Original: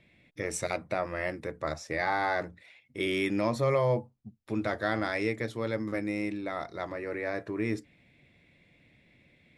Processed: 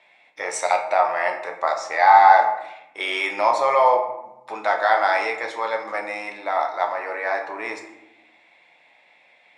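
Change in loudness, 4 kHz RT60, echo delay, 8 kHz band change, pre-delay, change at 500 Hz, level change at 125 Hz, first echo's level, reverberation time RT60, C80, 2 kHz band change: +11.0 dB, 0.50 s, no echo audible, can't be measured, 11 ms, +7.5 dB, below −20 dB, no echo audible, 0.90 s, 10.5 dB, +10.0 dB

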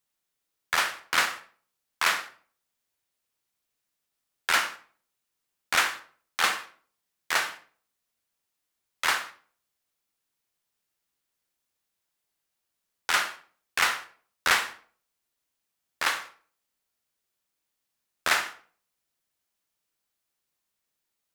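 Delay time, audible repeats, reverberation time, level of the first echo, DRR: no echo audible, no echo audible, 0.45 s, no echo audible, 9.5 dB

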